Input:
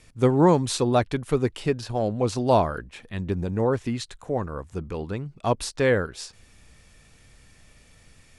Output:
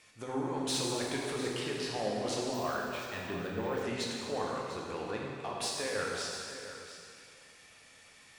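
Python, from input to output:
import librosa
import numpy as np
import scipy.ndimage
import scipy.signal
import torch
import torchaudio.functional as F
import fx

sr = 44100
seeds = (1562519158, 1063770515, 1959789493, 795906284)

p1 = fx.highpass(x, sr, hz=1000.0, slope=6)
p2 = fx.high_shelf(p1, sr, hz=5200.0, db=-6.0)
p3 = fx.over_compress(p2, sr, threshold_db=-32.0, ratio=-1.0)
p4 = 10.0 ** (-24.5 / 20.0) * np.tanh(p3 / 10.0 ** (-24.5 / 20.0))
p5 = p4 + fx.echo_single(p4, sr, ms=698, db=-13.0, dry=0)
p6 = fx.rev_plate(p5, sr, seeds[0], rt60_s=2.3, hf_ratio=1.0, predelay_ms=0, drr_db=-3.0)
p7 = fx.resample_bad(p6, sr, factor=2, down='filtered', up='hold', at=(2.54, 3.83))
y = p7 * 10.0 ** (-4.0 / 20.0)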